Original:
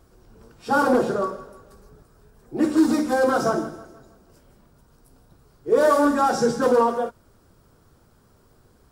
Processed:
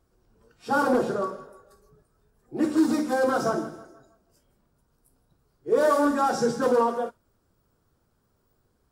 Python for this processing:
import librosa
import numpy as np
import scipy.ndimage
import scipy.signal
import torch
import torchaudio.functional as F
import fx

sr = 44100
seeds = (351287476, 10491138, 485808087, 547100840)

y = fx.noise_reduce_blind(x, sr, reduce_db=9)
y = y * librosa.db_to_amplitude(-3.5)